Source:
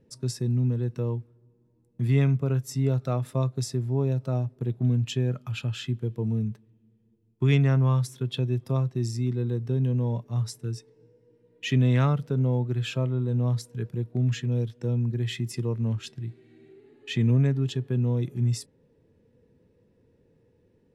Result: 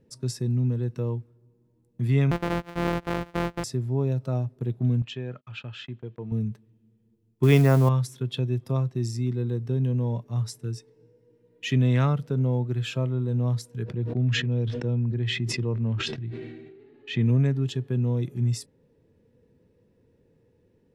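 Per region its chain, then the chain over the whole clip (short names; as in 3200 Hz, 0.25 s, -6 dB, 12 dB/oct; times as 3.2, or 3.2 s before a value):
2.31–3.64 sample sorter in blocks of 256 samples + tone controls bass -5 dB, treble -15 dB
5.02–6.32 LPF 3200 Hz + gate -44 dBFS, range -31 dB + low shelf 370 Hz -11 dB
7.43–7.89 switching spikes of -25 dBFS + bell 630 Hz +9.5 dB 2.6 oct
13.84–17.26 LPF 4000 Hz + sustainer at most 37 dB/s
whole clip: dry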